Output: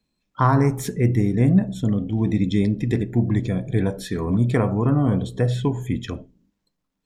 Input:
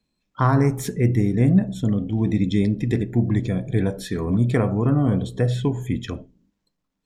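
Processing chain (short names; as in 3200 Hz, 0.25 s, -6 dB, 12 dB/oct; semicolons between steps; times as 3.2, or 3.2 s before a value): dynamic EQ 960 Hz, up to +4 dB, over -40 dBFS, Q 3.1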